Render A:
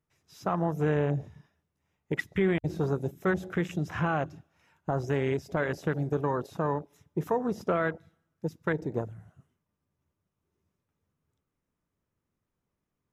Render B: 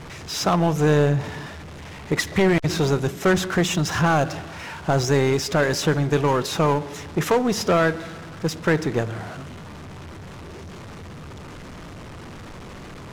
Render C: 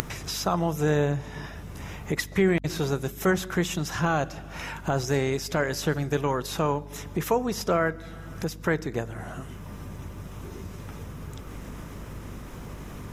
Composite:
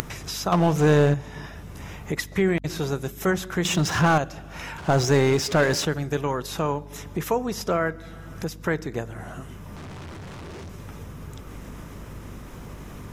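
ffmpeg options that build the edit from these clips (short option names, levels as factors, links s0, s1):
-filter_complex "[1:a]asplit=4[s0][s1][s2][s3];[2:a]asplit=5[s4][s5][s6][s7][s8];[s4]atrim=end=0.522[s9];[s0]atrim=start=0.518:end=1.142[s10];[s5]atrim=start=1.138:end=3.652[s11];[s1]atrim=start=3.648:end=4.182[s12];[s6]atrim=start=4.178:end=4.782[s13];[s2]atrim=start=4.778:end=5.852[s14];[s7]atrim=start=5.848:end=9.762[s15];[s3]atrim=start=9.758:end=10.692[s16];[s8]atrim=start=10.688[s17];[s9][s10]acrossfade=d=0.004:c1=hsin:c2=hsin[s18];[s18][s11]acrossfade=d=0.004:c1=hsin:c2=hsin[s19];[s19][s12]acrossfade=d=0.004:c1=hsin:c2=hsin[s20];[s20][s13]acrossfade=d=0.004:c1=hsin:c2=hsin[s21];[s21][s14]acrossfade=d=0.004:c1=hsin:c2=hsin[s22];[s22][s15]acrossfade=d=0.004:c1=hsin:c2=hsin[s23];[s23][s16]acrossfade=d=0.004:c1=hsin:c2=hsin[s24];[s24][s17]acrossfade=d=0.004:c1=hsin:c2=hsin"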